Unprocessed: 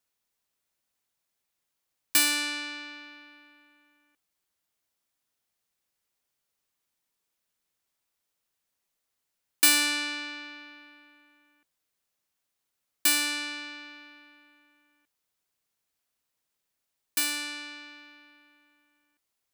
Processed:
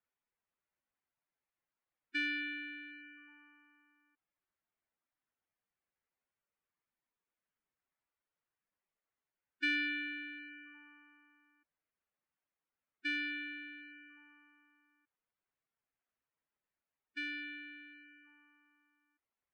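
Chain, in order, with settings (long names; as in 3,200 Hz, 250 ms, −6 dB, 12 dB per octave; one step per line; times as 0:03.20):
gate on every frequency bin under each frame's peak −10 dB strong
transistor ladder low-pass 2,700 Hz, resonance 20%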